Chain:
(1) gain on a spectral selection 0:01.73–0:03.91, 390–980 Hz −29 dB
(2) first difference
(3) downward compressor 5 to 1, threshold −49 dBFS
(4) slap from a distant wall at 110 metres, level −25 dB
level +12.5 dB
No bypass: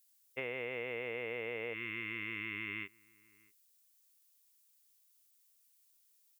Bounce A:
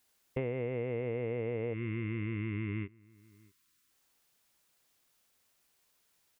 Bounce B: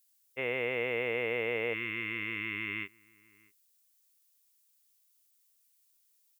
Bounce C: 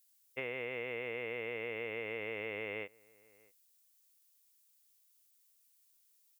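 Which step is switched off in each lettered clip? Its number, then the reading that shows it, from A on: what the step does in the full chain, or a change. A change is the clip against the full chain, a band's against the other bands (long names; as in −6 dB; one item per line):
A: 2, 125 Hz band +17.5 dB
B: 3, change in crest factor −2.0 dB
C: 1, 500 Hz band +3.5 dB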